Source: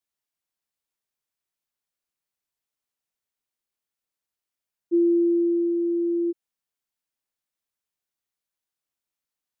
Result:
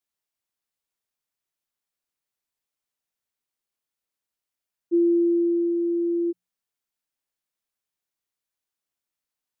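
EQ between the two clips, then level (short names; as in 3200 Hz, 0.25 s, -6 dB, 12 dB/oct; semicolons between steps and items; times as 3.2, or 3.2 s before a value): notches 60/120/180 Hz; 0.0 dB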